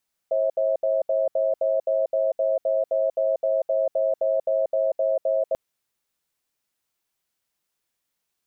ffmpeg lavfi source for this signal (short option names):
-f lavfi -i "aevalsrc='0.0794*(sin(2*PI*538*t)+sin(2*PI*646*t))*clip(min(mod(t,0.26),0.19-mod(t,0.26))/0.005,0,1)':d=5.24:s=44100"